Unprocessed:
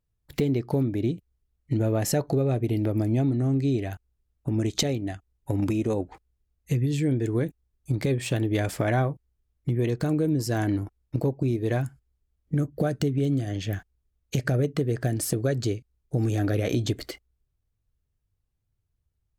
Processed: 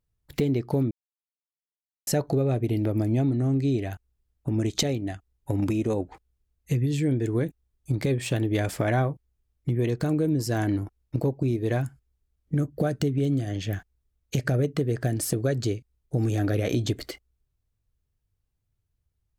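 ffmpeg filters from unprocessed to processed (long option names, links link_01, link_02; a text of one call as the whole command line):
ffmpeg -i in.wav -filter_complex "[0:a]asplit=3[link_01][link_02][link_03];[link_01]atrim=end=0.91,asetpts=PTS-STARTPTS,afade=type=out:start_time=0.906:duration=0.004:curve=hsin[link_04];[link_02]atrim=start=0.91:end=2.07,asetpts=PTS-STARTPTS,volume=0[link_05];[link_03]atrim=start=2.07,asetpts=PTS-STARTPTS,afade=type=in:duration=0.004:curve=hsin[link_06];[link_04][link_05][link_06]concat=n=3:v=0:a=1" out.wav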